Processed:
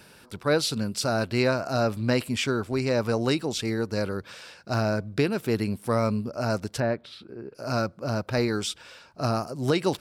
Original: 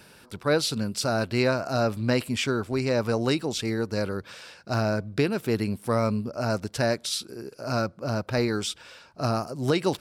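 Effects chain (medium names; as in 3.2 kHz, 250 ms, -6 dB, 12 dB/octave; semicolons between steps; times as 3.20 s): 6.80–7.55 s: distance through air 460 m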